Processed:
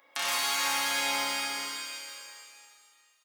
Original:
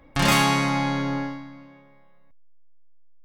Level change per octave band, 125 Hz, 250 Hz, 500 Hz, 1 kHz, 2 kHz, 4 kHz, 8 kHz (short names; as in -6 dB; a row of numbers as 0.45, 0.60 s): -34.5, -21.5, -11.0, -7.5, -4.0, -0.5, +1.5 dB